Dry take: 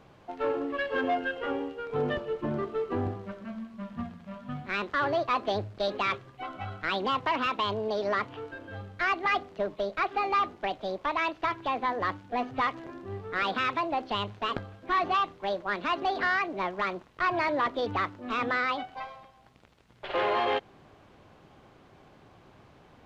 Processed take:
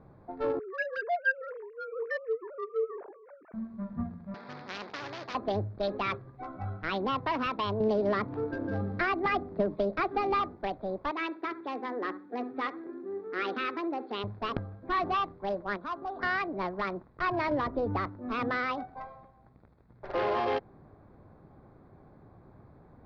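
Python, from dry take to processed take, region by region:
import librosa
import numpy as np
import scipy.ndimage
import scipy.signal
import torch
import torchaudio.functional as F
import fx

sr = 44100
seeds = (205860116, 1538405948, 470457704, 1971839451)

y = fx.chain(x, sr, fx.sine_speech(),
    fx.tilt_eq(slope=3.0), at=(0.59, 3.54))
y = fx.chain(y, sr, fx.cvsd(bps=32000),
    fx.highpass(hz=610.0, slope=12),
    fx.spectral_comp(ratio=4.0), at=(4.34, 5.35))
y = fx.chain(y, sr, fx.peak_eq(hz=260.0, db=6.0, octaves=1.7),
    fx.band_squash(depth_pct=70), at=(7.8, 10.41))
y = fx.chain(y, sr, fx.cabinet(low_hz=250.0, low_slope=24, high_hz=4700.0, hz=(370.0, 650.0, 1000.0), db=(6, -9, -7)),
    fx.echo_feedback(ms=68, feedback_pct=23, wet_db=-14.0), at=(11.11, 14.24))
y = fx.chain(y, sr, fx.cheby_ripple(hz=4700.0, ripple_db=9),
    fx.resample_linear(factor=6), at=(15.77, 16.23))
y = fx.chain(y, sr, fx.high_shelf(hz=3200.0, db=-9.5),
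    fx.band_squash(depth_pct=100), at=(17.51, 18.06))
y = fx.wiener(y, sr, points=15)
y = scipy.signal.sosfilt(scipy.signal.butter(6, 5100.0, 'lowpass', fs=sr, output='sos'), y)
y = fx.low_shelf(y, sr, hz=320.0, db=7.5)
y = y * librosa.db_to_amplitude(-3.0)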